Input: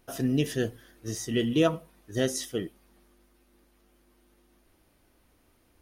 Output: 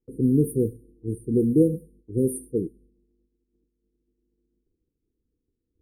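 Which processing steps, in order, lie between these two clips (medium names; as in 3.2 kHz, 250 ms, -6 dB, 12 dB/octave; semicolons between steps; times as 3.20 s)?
brick-wall FIR band-stop 510–8600 Hz; level-controlled noise filter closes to 2.2 kHz, open at -24.5 dBFS; expander -54 dBFS; trim +6 dB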